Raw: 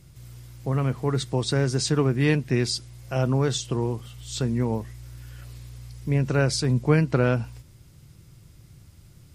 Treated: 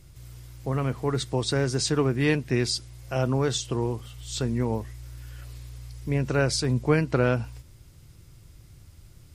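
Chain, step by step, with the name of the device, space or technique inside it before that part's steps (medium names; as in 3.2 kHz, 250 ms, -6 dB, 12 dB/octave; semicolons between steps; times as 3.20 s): low shelf boost with a cut just above (bass shelf 61 Hz +6 dB; peaking EQ 160 Hz -5.5 dB 1 oct)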